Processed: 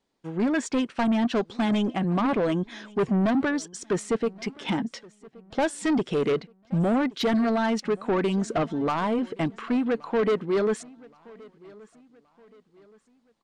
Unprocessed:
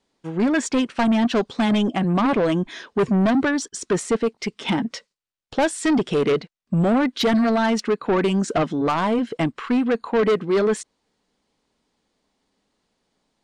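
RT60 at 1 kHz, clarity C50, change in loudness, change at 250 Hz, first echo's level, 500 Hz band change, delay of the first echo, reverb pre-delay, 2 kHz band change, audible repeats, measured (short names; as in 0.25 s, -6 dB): none, none, -4.5 dB, -4.5 dB, -23.5 dB, -4.5 dB, 1.123 s, none, -5.5 dB, 2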